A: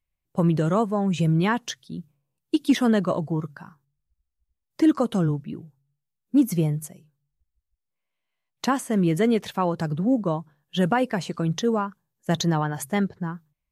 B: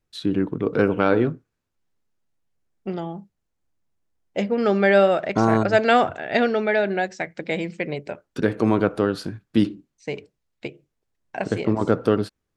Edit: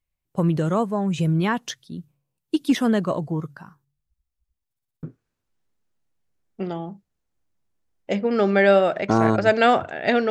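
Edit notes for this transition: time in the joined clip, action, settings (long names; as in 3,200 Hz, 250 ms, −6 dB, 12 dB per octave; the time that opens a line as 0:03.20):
A
0:04.67: stutter in place 0.06 s, 6 plays
0:05.03: continue with B from 0:01.30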